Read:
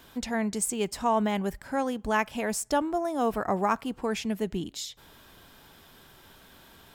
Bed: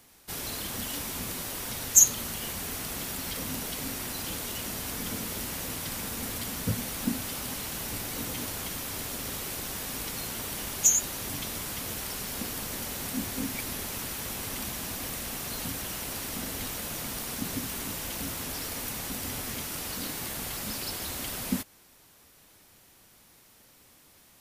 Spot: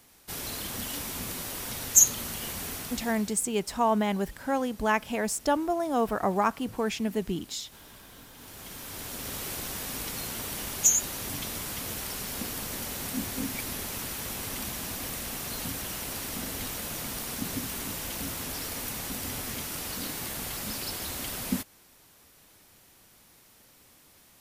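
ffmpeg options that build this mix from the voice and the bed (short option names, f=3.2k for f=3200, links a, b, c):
-filter_complex "[0:a]adelay=2750,volume=0.5dB[a];[1:a]volume=17.5dB,afade=t=out:st=2.67:d=0.71:silence=0.133352,afade=t=in:st=8.35:d=1.1:silence=0.125893[b];[a][b]amix=inputs=2:normalize=0"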